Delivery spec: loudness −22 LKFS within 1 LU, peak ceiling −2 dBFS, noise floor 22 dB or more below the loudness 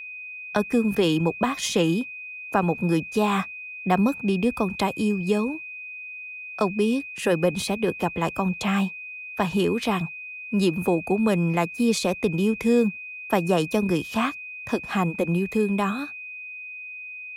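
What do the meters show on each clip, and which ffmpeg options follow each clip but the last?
interfering tone 2,500 Hz; level of the tone −35 dBFS; integrated loudness −24.5 LKFS; sample peak −7.5 dBFS; target loudness −22.0 LKFS
→ -af "bandreject=frequency=2500:width=30"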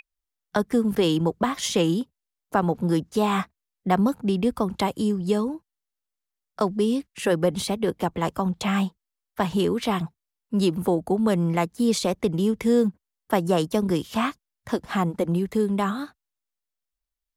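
interfering tone none found; integrated loudness −24.5 LKFS; sample peak −7.5 dBFS; target loudness −22.0 LKFS
→ -af "volume=2.5dB"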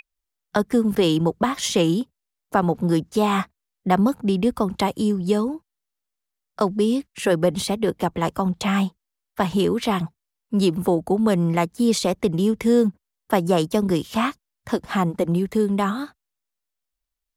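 integrated loudness −22.0 LKFS; sample peak −5.0 dBFS; background noise floor −83 dBFS

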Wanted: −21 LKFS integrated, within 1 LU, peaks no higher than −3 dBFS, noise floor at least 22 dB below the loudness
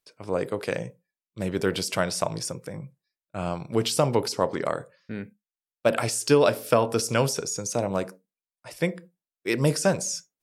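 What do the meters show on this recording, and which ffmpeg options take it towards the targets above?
integrated loudness −26.0 LKFS; sample peak −5.0 dBFS; target loudness −21.0 LKFS
→ -af "volume=5dB,alimiter=limit=-3dB:level=0:latency=1"

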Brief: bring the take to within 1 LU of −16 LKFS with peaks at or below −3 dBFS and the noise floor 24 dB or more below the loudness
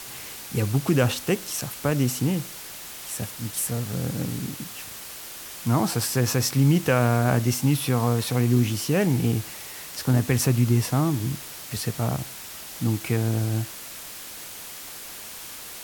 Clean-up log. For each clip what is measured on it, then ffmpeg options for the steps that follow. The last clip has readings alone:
background noise floor −39 dBFS; target noise floor −49 dBFS; integrated loudness −24.5 LKFS; sample peak −6.5 dBFS; target loudness −16.0 LKFS
→ -af "afftdn=noise_reduction=10:noise_floor=-39"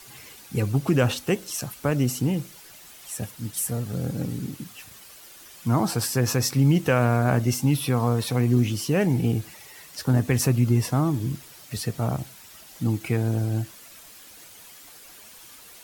background noise floor −47 dBFS; target noise floor −49 dBFS
→ -af "afftdn=noise_reduction=6:noise_floor=-47"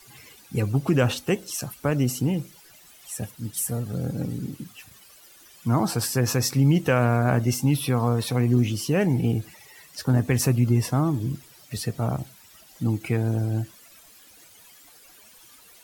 background noise floor −52 dBFS; integrated loudness −24.5 LKFS; sample peak −7.5 dBFS; target loudness −16.0 LKFS
→ -af "volume=8.5dB,alimiter=limit=-3dB:level=0:latency=1"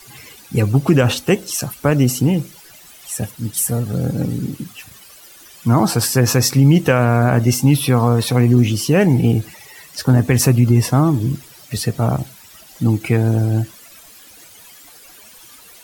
integrated loudness −16.5 LKFS; sample peak −3.0 dBFS; background noise floor −43 dBFS

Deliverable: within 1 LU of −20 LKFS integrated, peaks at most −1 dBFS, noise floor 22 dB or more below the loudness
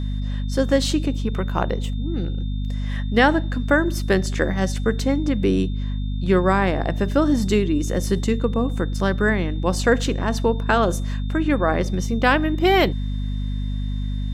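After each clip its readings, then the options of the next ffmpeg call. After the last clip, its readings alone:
mains hum 50 Hz; hum harmonics up to 250 Hz; level of the hum −22 dBFS; interfering tone 3,600 Hz; level of the tone −45 dBFS; integrated loudness −21.5 LKFS; sample peak −3.0 dBFS; target loudness −20.0 LKFS
→ -af "bandreject=frequency=50:width_type=h:width=4,bandreject=frequency=100:width_type=h:width=4,bandreject=frequency=150:width_type=h:width=4,bandreject=frequency=200:width_type=h:width=4,bandreject=frequency=250:width_type=h:width=4"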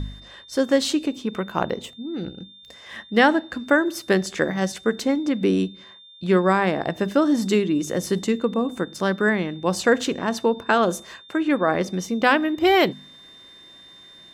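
mains hum none found; interfering tone 3,600 Hz; level of the tone −45 dBFS
→ -af "bandreject=frequency=3600:width=30"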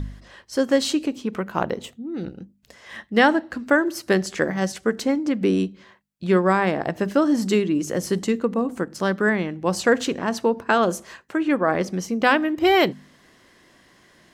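interfering tone none found; integrated loudness −22.0 LKFS; sample peak −4.0 dBFS; target loudness −20.0 LKFS
→ -af "volume=2dB"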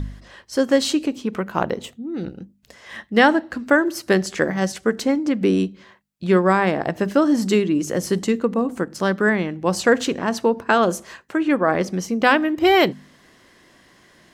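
integrated loudness −20.0 LKFS; sample peak −2.0 dBFS; background noise floor −54 dBFS

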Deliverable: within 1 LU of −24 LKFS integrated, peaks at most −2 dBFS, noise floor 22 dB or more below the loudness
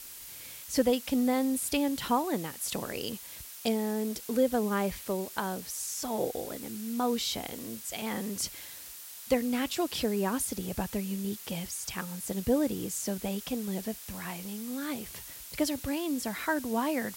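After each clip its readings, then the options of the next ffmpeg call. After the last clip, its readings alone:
background noise floor −46 dBFS; target noise floor −54 dBFS; integrated loudness −32.0 LKFS; sample peak −13.5 dBFS; target loudness −24.0 LKFS
→ -af "afftdn=noise_reduction=8:noise_floor=-46"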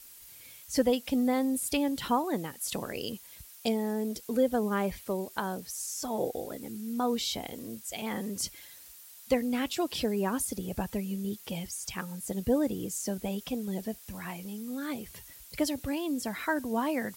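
background noise floor −51 dBFS; target noise floor −54 dBFS
→ -af "afftdn=noise_reduction=6:noise_floor=-51"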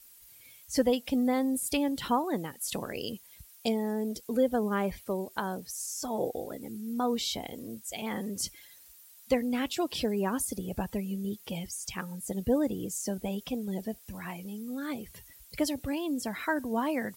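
background noise floor −55 dBFS; integrated loudness −32.0 LKFS; sample peak −14.0 dBFS; target loudness −24.0 LKFS
→ -af "volume=8dB"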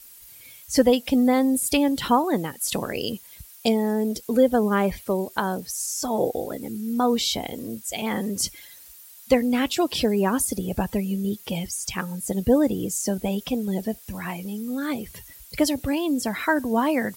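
integrated loudness −24.0 LKFS; sample peak −6.0 dBFS; background noise floor −47 dBFS

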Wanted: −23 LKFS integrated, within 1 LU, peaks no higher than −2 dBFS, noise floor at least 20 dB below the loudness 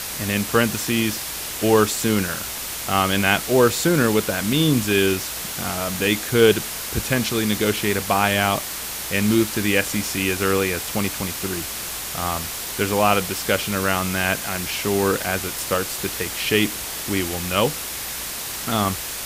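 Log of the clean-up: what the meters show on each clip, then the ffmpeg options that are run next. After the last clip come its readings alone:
background noise floor −30 dBFS; target noise floor −41 dBFS; integrated loudness −21.0 LKFS; sample peak −1.0 dBFS; target loudness −23.0 LKFS
→ -af "afftdn=noise_reduction=11:noise_floor=-30"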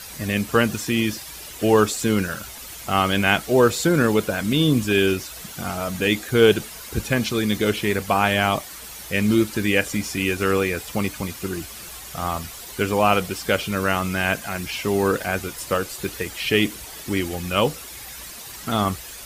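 background noise floor −38 dBFS; target noise floor −42 dBFS
→ -af "afftdn=noise_reduction=6:noise_floor=-38"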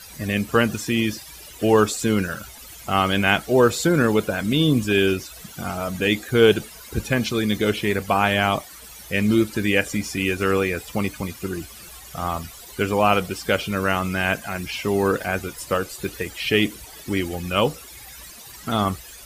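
background noise floor −42 dBFS; integrated loudness −22.0 LKFS; sample peak −1.5 dBFS; target loudness −23.0 LKFS
→ -af "volume=-1dB"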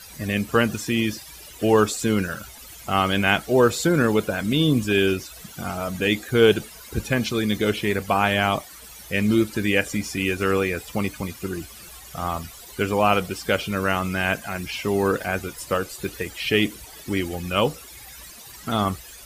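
integrated loudness −23.0 LKFS; sample peak −2.5 dBFS; background noise floor −43 dBFS

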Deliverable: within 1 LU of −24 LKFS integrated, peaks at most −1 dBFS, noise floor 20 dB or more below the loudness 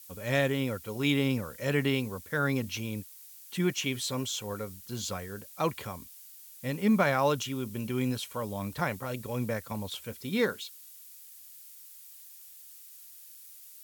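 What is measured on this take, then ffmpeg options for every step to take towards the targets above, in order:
background noise floor −51 dBFS; target noise floor −52 dBFS; integrated loudness −31.5 LKFS; sample peak −12.5 dBFS; target loudness −24.0 LKFS
→ -af "afftdn=noise_reduction=6:noise_floor=-51"
-af "volume=7.5dB"

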